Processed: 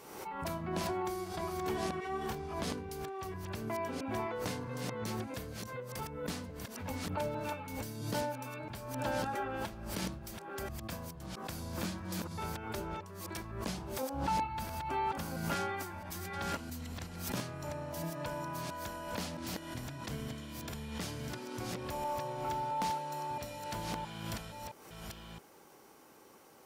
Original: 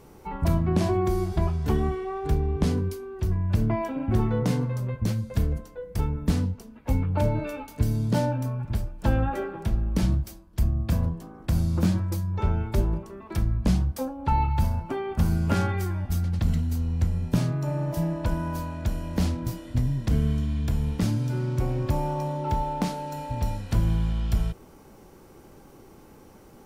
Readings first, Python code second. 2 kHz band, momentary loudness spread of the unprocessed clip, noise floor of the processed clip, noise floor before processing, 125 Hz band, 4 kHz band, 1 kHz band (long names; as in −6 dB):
−2.0 dB, 6 LU, −56 dBFS, −50 dBFS, −18.5 dB, −1.5 dB, −4.0 dB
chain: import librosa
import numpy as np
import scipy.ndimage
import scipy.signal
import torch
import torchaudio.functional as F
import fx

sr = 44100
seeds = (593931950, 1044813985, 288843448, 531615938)

y = fx.reverse_delay(x, sr, ms=668, wet_db=-2.0)
y = fx.highpass(y, sr, hz=840.0, slope=6)
y = fx.pre_swell(y, sr, db_per_s=51.0)
y = F.gain(torch.from_numpy(y), -4.0).numpy()